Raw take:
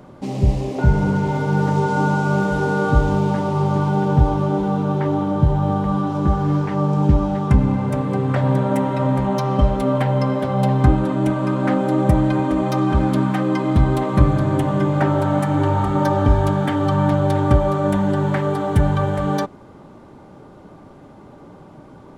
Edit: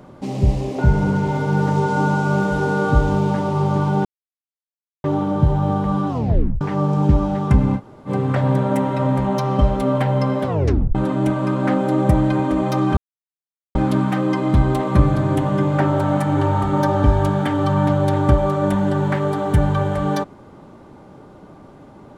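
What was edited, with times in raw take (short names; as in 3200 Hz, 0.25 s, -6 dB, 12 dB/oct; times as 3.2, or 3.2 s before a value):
4.05–5.04 mute
6.09 tape stop 0.52 s
7.78–8.08 room tone, crossfade 0.06 s
10.47 tape stop 0.48 s
12.97 insert silence 0.78 s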